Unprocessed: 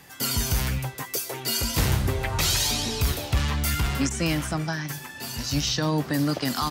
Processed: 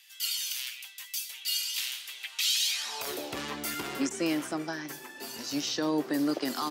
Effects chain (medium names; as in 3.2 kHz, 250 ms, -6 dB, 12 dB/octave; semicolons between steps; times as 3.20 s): high-pass sweep 3 kHz -> 340 Hz, 2.66–3.17 s; trim -6.5 dB